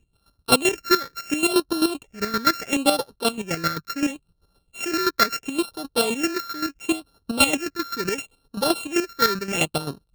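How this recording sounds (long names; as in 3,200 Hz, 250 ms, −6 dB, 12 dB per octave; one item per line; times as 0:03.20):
a buzz of ramps at a fixed pitch in blocks of 32 samples
chopped level 7.7 Hz, depth 65%, duty 30%
phaser sweep stages 6, 0.73 Hz, lowest notch 750–2,200 Hz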